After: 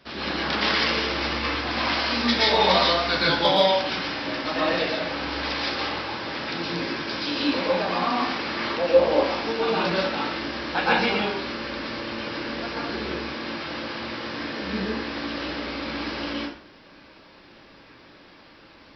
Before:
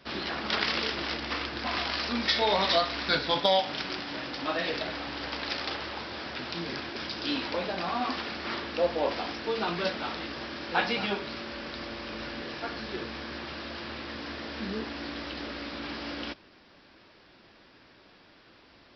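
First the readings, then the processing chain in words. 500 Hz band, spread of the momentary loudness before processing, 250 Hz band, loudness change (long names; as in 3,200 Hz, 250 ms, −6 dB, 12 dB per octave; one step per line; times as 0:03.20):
+7.5 dB, 12 LU, +7.5 dB, +6.5 dB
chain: dense smooth reverb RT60 0.53 s, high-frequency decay 0.7×, pre-delay 105 ms, DRR −6 dB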